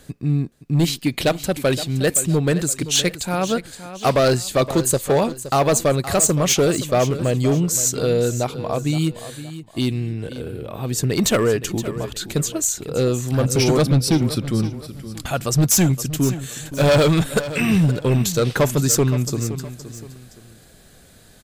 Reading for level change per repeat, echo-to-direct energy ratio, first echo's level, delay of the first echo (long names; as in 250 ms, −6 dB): −9.0 dB, −13.0 dB, −13.5 dB, 519 ms